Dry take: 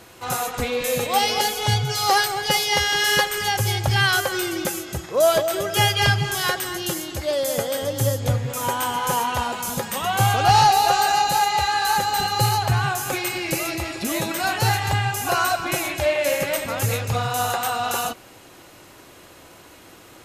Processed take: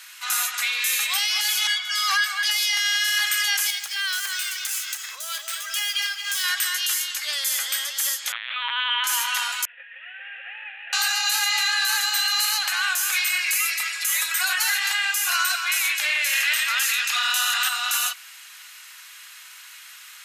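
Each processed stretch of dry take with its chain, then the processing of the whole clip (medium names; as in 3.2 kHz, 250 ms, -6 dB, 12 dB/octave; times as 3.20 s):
1.67–2.43 s: steep high-pass 710 Hz 96 dB/octave + tilt EQ -3.5 dB/octave + comb 1.8 ms, depth 82%
3.70–6.44 s: median filter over 3 samples + treble shelf 5.3 kHz +6.5 dB + compression, threshold -27 dBFS
8.32–9.04 s: treble shelf 2.1 kHz +9.5 dB + LPC vocoder at 8 kHz pitch kept
9.65–10.93 s: CVSD coder 16 kbps + vowel filter e
13.31–14.75 s: peaking EQ 3.7 kHz -5 dB 1.6 oct + comb 5.5 ms, depth 79%
16.33–17.69 s: peaking EQ 2.4 kHz +8 dB 2.4 oct + band-stop 2.2 kHz, Q 11
whole clip: high-pass 1.5 kHz 24 dB/octave; peak limiter -19.5 dBFS; trim +7 dB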